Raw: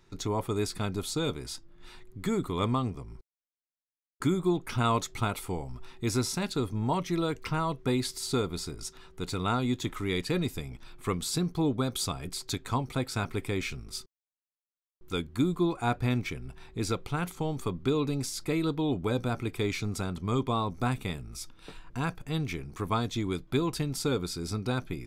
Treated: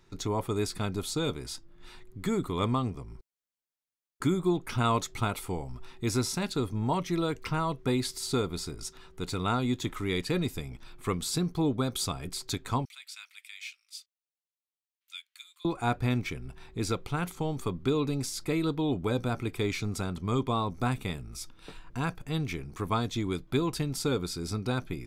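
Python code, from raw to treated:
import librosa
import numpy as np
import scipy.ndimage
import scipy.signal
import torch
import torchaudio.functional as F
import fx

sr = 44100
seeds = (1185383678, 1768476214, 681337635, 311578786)

y = fx.ladder_highpass(x, sr, hz=2000.0, resonance_pct=30, at=(12.85, 15.65))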